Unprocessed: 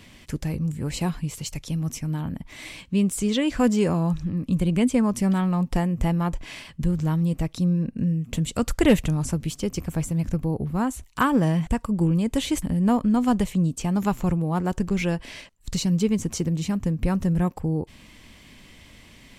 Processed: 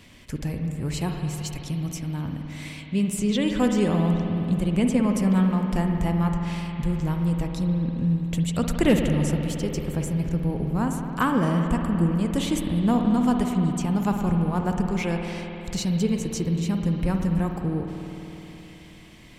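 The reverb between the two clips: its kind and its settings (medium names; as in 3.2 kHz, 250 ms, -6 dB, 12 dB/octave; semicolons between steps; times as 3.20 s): spring tank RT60 3.6 s, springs 53 ms, chirp 25 ms, DRR 3 dB; trim -2 dB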